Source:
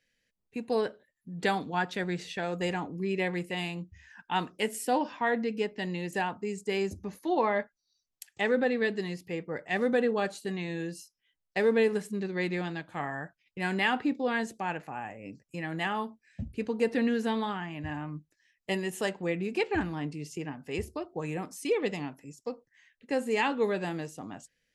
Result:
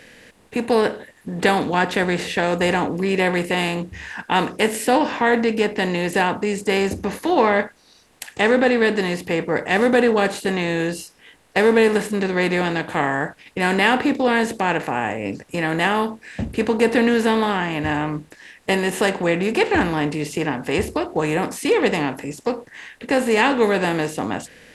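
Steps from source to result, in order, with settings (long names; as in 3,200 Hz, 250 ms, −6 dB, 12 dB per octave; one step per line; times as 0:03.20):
compressor on every frequency bin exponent 0.6
level +7.5 dB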